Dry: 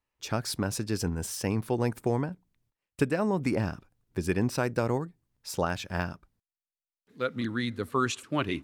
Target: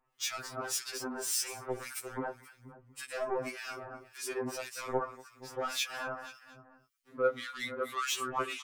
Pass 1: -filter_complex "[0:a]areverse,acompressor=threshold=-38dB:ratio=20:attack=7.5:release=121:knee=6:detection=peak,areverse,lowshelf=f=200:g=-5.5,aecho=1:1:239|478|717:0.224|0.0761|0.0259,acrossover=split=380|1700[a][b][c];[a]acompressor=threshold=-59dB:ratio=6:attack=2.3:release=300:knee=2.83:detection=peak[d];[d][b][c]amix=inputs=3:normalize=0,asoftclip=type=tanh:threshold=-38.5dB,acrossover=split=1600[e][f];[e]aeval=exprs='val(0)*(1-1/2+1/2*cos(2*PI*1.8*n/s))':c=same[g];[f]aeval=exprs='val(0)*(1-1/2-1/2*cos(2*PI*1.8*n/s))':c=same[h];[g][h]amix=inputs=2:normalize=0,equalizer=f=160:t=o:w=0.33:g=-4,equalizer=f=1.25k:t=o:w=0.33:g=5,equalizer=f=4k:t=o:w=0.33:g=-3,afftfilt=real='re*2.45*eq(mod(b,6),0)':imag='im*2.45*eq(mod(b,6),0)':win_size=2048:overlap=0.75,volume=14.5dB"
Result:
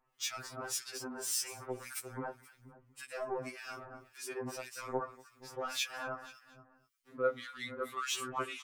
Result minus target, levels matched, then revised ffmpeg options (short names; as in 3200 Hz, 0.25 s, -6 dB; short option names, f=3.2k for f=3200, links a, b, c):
compressor: peak gain reduction +6.5 dB
-filter_complex "[0:a]areverse,acompressor=threshold=-31dB:ratio=20:attack=7.5:release=121:knee=6:detection=peak,areverse,lowshelf=f=200:g=-5.5,aecho=1:1:239|478|717:0.224|0.0761|0.0259,acrossover=split=380|1700[a][b][c];[a]acompressor=threshold=-59dB:ratio=6:attack=2.3:release=300:knee=2.83:detection=peak[d];[d][b][c]amix=inputs=3:normalize=0,asoftclip=type=tanh:threshold=-38.5dB,acrossover=split=1600[e][f];[e]aeval=exprs='val(0)*(1-1/2+1/2*cos(2*PI*1.8*n/s))':c=same[g];[f]aeval=exprs='val(0)*(1-1/2-1/2*cos(2*PI*1.8*n/s))':c=same[h];[g][h]amix=inputs=2:normalize=0,equalizer=f=160:t=o:w=0.33:g=-4,equalizer=f=1.25k:t=o:w=0.33:g=5,equalizer=f=4k:t=o:w=0.33:g=-3,afftfilt=real='re*2.45*eq(mod(b,6),0)':imag='im*2.45*eq(mod(b,6),0)':win_size=2048:overlap=0.75,volume=14.5dB"